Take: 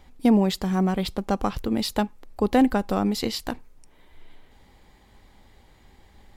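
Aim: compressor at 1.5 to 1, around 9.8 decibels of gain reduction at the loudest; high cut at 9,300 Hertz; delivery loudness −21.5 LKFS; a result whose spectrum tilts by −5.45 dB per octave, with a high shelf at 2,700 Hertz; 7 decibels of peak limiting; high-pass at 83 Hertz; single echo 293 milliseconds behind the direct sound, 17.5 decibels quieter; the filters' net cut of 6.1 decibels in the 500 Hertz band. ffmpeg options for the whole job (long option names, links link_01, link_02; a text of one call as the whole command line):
ffmpeg -i in.wav -af "highpass=83,lowpass=9300,equalizer=frequency=500:width_type=o:gain=-7.5,highshelf=frequency=2700:gain=-6,acompressor=threshold=-44dB:ratio=1.5,alimiter=level_in=1.5dB:limit=-24dB:level=0:latency=1,volume=-1.5dB,aecho=1:1:293:0.133,volume=15.5dB" out.wav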